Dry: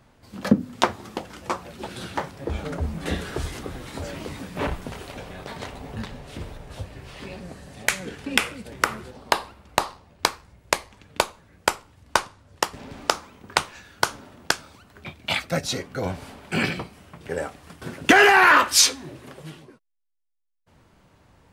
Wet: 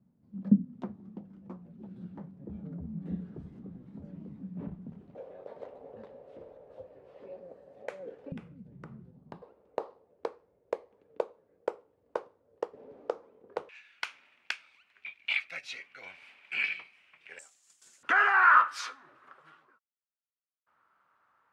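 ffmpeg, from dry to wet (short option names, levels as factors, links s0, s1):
-af "asetnsamples=n=441:p=0,asendcmd='5.15 bandpass f 520;8.32 bandpass f 160;9.42 bandpass f 470;13.69 bandpass f 2400;17.39 bandpass f 7100;18.03 bandpass f 1300',bandpass=f=190:t=q:w=4.9:csg=0"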